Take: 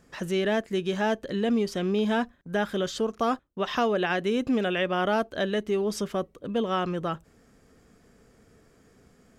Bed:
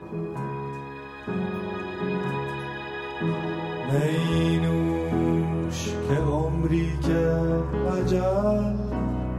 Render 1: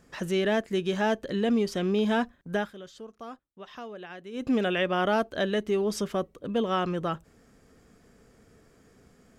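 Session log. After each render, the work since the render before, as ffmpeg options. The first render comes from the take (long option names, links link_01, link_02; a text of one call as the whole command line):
ffmpeg -i in.wav -filter_complex "[0:a]asplit=3[link_01][link_02][link_03];[link_01]atrim=end=2.73,asetpts=PTS-STARTPTS,afade=type=out:start_time=2.54:duration=0.19:silence=0.158489[link_04];[link_02]atrim=start=2.73:end=4.32,asetpts=PTS-STARTPTS,volume=-16dB[link_05];[link_03]atrim=start=4.32,asetpts=PTS-STARTPTS,afade=type=in:duration=0.19:silence=0.158489[link_06];[link_04][link_05][link_06]concat=n=3:v=0:a=1" out.wav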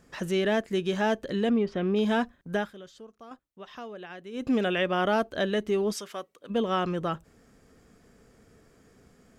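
ffmpeg -i in.wav -filter_complex "[0:a]asplit=3[link_01][link_02][link_03];[link_01]afade=type=out:start_time=1.49:duration=0.02[link_04];[link_02]lowpass=2400,afade=type=in:start_time=1.49:duration=0.02,afade=type=out:start_time=1.95:duration=0.02[link_05];[link_03]afade=type=in:start_time=1.95:duration=0.02[link_06];[link_04][link_05][link_06]amix=inputs=3:normalize=0,asplit=3[link_07][link_08][link_09];[link_07]afade=type=out:start_time=5.92:duration=0.02[link_10];[link_08]highpass=frequency=1300:poles=1,afade=type=in:start_time=5.92:duration=0.02,afade=type=out:start_time=6.49:duration=0.02[link_11];[link_09]afade=type=in:start_time=6.49:duration=0.02[link_12];[link_10][link_11][link_12]amix=inputs=3:normalize=0,asplit=2[link_13][link_14];[link_13]atrim=end=3.31,asetpts=PTS-STARTPTS,afade=type=out:start_time=2.57:duration=0.74:silence=0.446684[link_15];[link_14]atrim=start=3.31,asetpts=PTS-STARTPTS,afade=type=in:duration=0.004:curve=hsin:silence=0.446684[link_16];[link_15][link_16]concat=n=2:v=0:a=1" out.wav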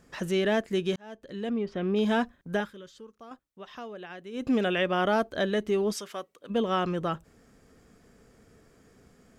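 ffmpeg -i in.wav -filter_complex "[0:a]asettb=1/sr,asplit=3[link_01][link_02][link_03];[link_01]atrim=end=2.604[link_04];[link_02]atrim=start=2.6:end=3.16,asetpts=PTS-STARTPTS,afade=type=in:duration=0.004:curve=qsin,afade=type=out:start_time=0.556:duration=0.004:curve=qsin,asuperstop=centerf=700:order=4:qfactor=2.8[link_05];[link_03]atrim=start=3.156[link_06];[link_04][link_05]acrossfade=duration=0.004:curve1=hsin:curve2=qsin[link_07];[link_07][link_06]acrossfade=duration=0.004:curve1=qsin:curve2=hsin,asettb=1/sr,asplit=3[link_08][link_09][link_10];[link_08]atrim=end=5.094[link_11];[link_09]atrim=start=5.09:end=5.59,asetpts=PTS-STARTPTS,afade=type=in:duration=0.004:curve=qsin,afade=type=out:start_time=0.496:duration=0.004:curve=qsin,bandreject=frequency=2800:width=11[link_12];[link_10]atrim=start=5.586[link_13];[link_11][link_12]acrossfade=duration=0.004:curve1=hsin:curve2=qsin[link_14];[link_14][link_13]acrossfade=duration=0.004:curve1=qsin:curve2=hsin,asplit=2[link_15][link_16];[link_15]atrim=end=0.96,asetpts=PTS-STARTPTS,afade=type=out:start_time=0.956:duration=0.004:curve=hsin[link_17];[link_16]atrim=start=0.96,asetpts=PTS-STARTPTS,afade=type=in:duration=1.08[link_18];[link_17][link_18]concat=n=2:v=0:a=1" out.wav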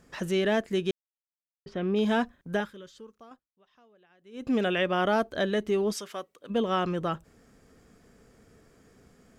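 ffmpeg -i in.wav -filter_complex "[0:a]asplit=5[link_01][link_02][link_03][link_04][link_05];[link_01]atrim=end=0.91,asetpts=PTS-STARTPTS,afade=type=out:start_time=0.906:duration=0.004:curve=hsin[link_06];[link_02]atrim=start=0.91:end=1.66,asetpts=PTS-STARTPTS,volume=0[link_07];[link_03]atrim=start=1.66:end=3.51,asetpts=PTS-STARTPTS,afade=type=in:duration=0.004:curve=hsin,afade=type=out:start_time=1.45:duration=0.4:silence=0.1[link_08];[link_04]atrim=start=3.51:end=4.19,asetpts=PTS-STARTPTS,volume=-20dB[link_09];[link_05]atrim=start=4.19,asetpts=PTS-STARTPTS,afade=type=in:duration=0.4:silence=0.1[link_10];[link_06][link_07][link_08][link_09][link_10]concat=n=5:v=0:a=1" out.wav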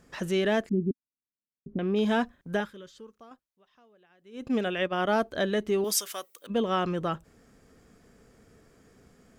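ffmpeg -i in.wav -filter_complex "[0:a]asettb=1/sr,asplit=3[link_01][link_02][link_03];[link_01]atrim=end=0.694[link_04];[link_02]atrim=start=0.69:end=1.79,asetpts=PTS-STARTPTS,afade=type=in:duration=0.004:curve=qsin,afade=type=out:start_time=1.096:duration=0.004:curve=qsin,lowpass=frequency=250:width_type=q:width=3.1[link_05];[link_03]atrim=start=1.786[link_06];[link_04][link_05]acrossfade=duration=0.004:curve1=hsin:curve2=qsin[link_07];[link_07][link_06]acrossfade=duration=0.004:curve1=qsin:curve2=hsin,asplit=3[link_08][link_09][link_10];[link_08]afade=type=out:start_time=4.47:duration=0.02[link_11];[link_09]agate=range=-33dB:threshold=-24dB:ratio=3:release=100:detection=peak,afade=type=in:start_time=4.47:duration=0.02,afade=type=out:start_time=5.08:duration=0.02[link_12];[link_10]afade=type=in:start_time=5.08:duration=0.02[link_13];[link_11][link_12][link_13]amix=inputs=3:normalize=0,asettb=1/sr,asplit=3[link_14][link_15][link_16];[link_14]atrim=end=5.844[link_17];[link_15]atrim=start=5.84:end=6.47,asetpts=PTS-STARTPTS,afade=type=in:duration=0.004:curve=qsin,afade=type=out:start_time=0.626:duration=0.004:curve=qsin,aemphasis=mode=production:type=riaa[link_18];[link_16]atrim=start=6.466[link_19];[link_17][link_18]acrossfade=duration=0.004:curve1=hsin:curve2=qsin[link_20];[link_20][link_19]acrossfade=duration=0.004:curve1=qsin:curve2=hsin" out.wav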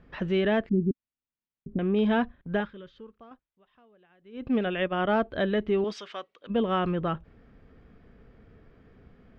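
ffmpeg -i in.wav -af "lowpass=frequency=3400:width=0.5412,lowpass=frequency=3400:width=1.3066,lowshelf=frequency=110:gain=10.5" out.wav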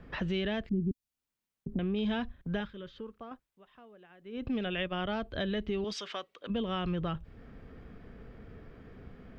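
ffmpeg -i in.wav -filter_complex "[0:a]asplit=2[link_01][link_02];[link_02]alimiter=limit=-22.5dB:level=0:latency=1,volume=-2.5dB[link_03];[link_01][link_03]amix=inputs=2:normalize=0,acrossover=split=130|3000[link_04][link_05][link_06];[link_05]acompressor=threshold=-39dB:ratio=2.5[link_07];[link_04][link_07][link_06]amix=inputs=3:normalize=0" out.wav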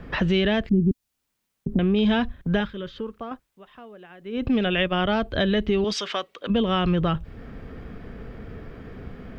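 ffmpeg -i in.wav -af "volume=11dB" out.wav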